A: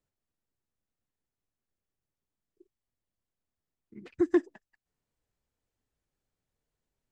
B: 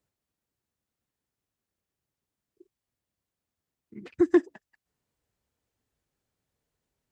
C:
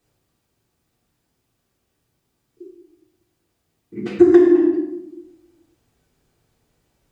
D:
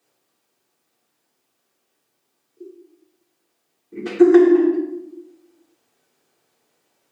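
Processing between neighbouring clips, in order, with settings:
high-pass 49 Hz; trim +4 dB
reverberation RT60 0.90 s, pre-delay 3 ms, DRR -8 dB; compression 10:1, threshold -14 dBFS, peak gain reduction 11.5 dB; trim +7 dB
high-pass 350 Hz 12 dB/octave; trim +2.5 dB

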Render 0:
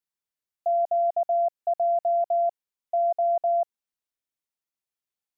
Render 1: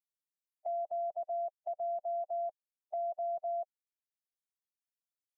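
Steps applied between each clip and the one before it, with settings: expander on every frequency bin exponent 3; dynamic bell 760 Hz, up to -4 dB, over -34 dBFS, Q 2.4; three bands compressed up and down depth 40%; trim -8.5 dB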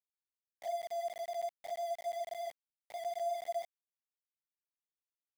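phase randomisation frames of 100 ms; small samples zeroed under -42 dBFS; trim -2 dB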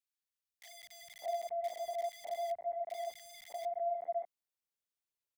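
three bands offset in time highs, lows, mids 210/600 ms, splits 170/1400 Hz; trim +1 dB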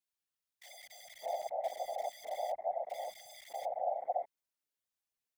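whisper effect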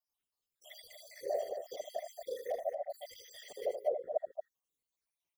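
random holes in the spectrogram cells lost 73%; frequency shift -110 Hz; loudspeakers at several distances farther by 27 m -8 dB, 78 m -8 dB; trim +4.5 dB

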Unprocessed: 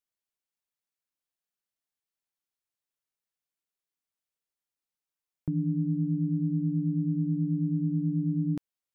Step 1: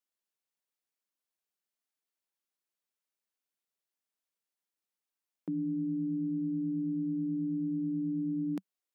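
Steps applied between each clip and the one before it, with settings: elliptic high-pass 190 Hz, stop band 40 dB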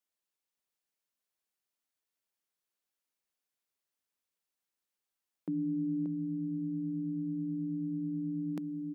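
delay 581 ms -5.5 dB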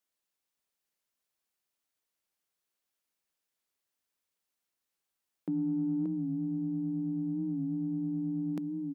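in parallel at -9 dB: saturation -31.5 dBFS, distortion -18 dB; on the sum: warped record 45 rpm, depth 100 cents

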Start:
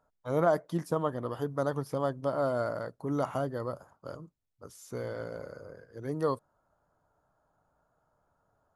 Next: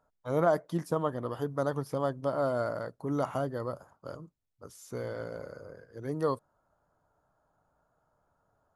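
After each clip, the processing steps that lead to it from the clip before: no audible change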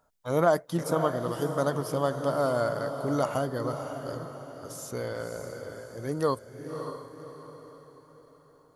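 treble shelf 2.8 kHz +8.5 dB; echo that smears into a reverb 571 ms, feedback 44%, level -8 dB; trim +2.5 dB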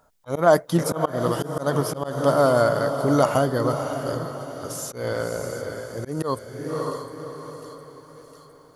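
feedback echo behind a high-pass 709 ms, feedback 61%, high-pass 2.4 kHz, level -13 dB; slow attack 165 ms; trim +8.5 dB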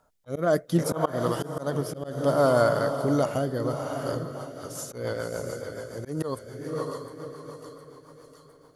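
rotary cabinet horn 0.65 Hz, later 7 Hz, at 3.89 s; trim -2 dB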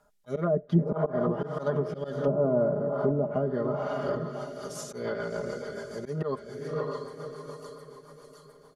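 low-pass that closes with the level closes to 450 Hz, closed at -20 dBFS; comb 4.9 ms, depth 91%; trim -2 dB

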